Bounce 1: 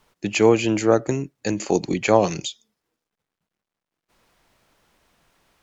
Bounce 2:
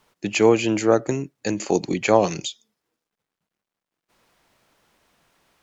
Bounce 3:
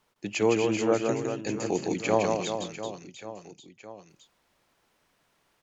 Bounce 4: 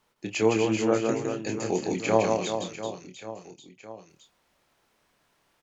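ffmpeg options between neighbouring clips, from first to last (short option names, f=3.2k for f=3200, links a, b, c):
-af "lowshelf=f=66:g=-9.5"
-af "aecho=1:1:160|384|697.6|1137|1751:0.631|0.398|0.251|0.158|0.1,volume=-8dB"
-filter_complex "[0:a]asplit=2[a][b];[b]adelay=27,volume=-7dB[c];[a][c]amix=inputs=2:normalize=0"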